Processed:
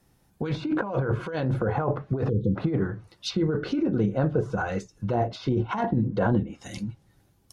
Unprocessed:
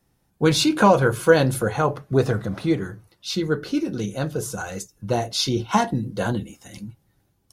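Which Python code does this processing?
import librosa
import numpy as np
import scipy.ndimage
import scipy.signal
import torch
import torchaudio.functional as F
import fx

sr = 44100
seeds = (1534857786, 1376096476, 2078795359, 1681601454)

y = fx.over_compress(x, sr, threshold_db=-24.0, ratio=-1.0)
y = fx.spec_erase(y, sr, start_s=2.29, length_s=0.27, low_hz=520.0, high_hz=3000.0)
y = fx.env_lowpass_down(y, sr, base_hz=1300.0, full_db=-21.5)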